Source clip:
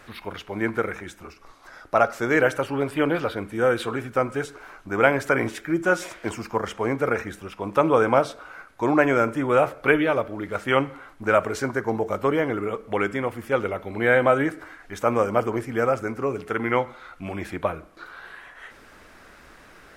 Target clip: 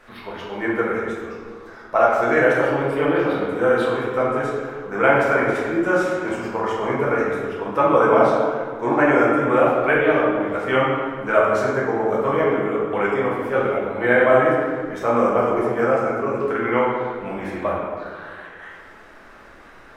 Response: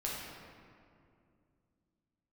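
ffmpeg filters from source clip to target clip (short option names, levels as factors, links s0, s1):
-filter_complex "[0:a]equalizer=f=880:w=0.31:g=8[s0];[1:a]atrim=start_sample=2205,asetrate=61740,aresample=44100[s1];[s0][s1]afir=irnorm=-1:irlink=0,volume=0.668"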